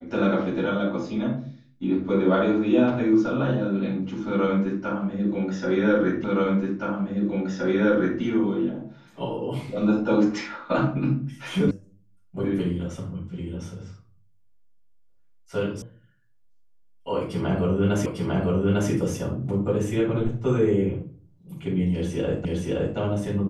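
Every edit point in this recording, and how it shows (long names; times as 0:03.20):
0:06.24: the same again, the last 1.97 s
0:11.71: cut off before it has died away
0:15.82: cut off before it has died away
0:18.06: the same again, the last 0.85 s
0:22.45: the same again, the last 0.52 s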